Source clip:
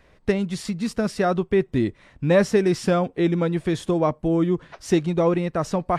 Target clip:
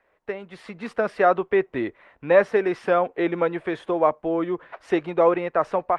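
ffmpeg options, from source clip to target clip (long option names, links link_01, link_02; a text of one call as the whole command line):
ffmpeg -i in.wav -filter_complex "[0:a]acrossover=split=410 2700:gain=0.0891 1 0.0708[link_01][link_02][link_03];[link_01][link_02][link_03]amix=inputs=3:normalize=0,dynaudnorm=framelen=420:gausssize=3:maxgain=14dB,volume=-4.5dB" -ar 48000 -c:a libopus -b:a 32k out.opus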